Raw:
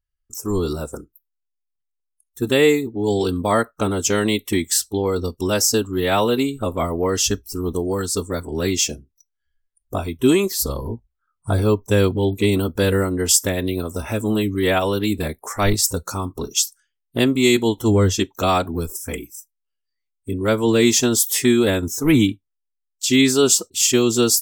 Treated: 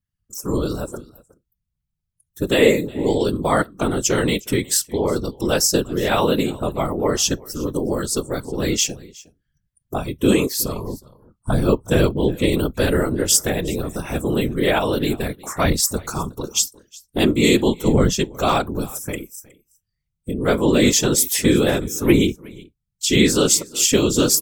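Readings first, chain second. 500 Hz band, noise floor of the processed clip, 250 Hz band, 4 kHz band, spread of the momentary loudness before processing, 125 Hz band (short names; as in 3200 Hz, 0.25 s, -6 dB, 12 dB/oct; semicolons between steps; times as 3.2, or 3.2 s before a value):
0.0 dB, -78 dBFS, 0.0 dB, 0.0 dB, 12 LU, -0.5 dB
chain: echo 0.365 s -22.5 dB; whisperiser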